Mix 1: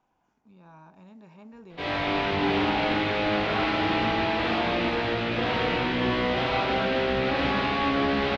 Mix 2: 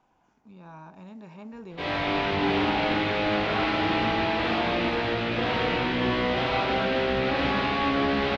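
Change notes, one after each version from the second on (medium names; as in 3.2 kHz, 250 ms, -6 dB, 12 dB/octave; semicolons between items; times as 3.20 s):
speech +5.5 dB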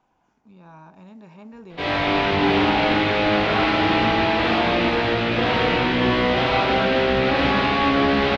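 background +6.0 dB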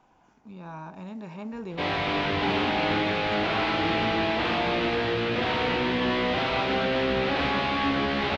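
speech +5.5 dB; background: send -9.5 dB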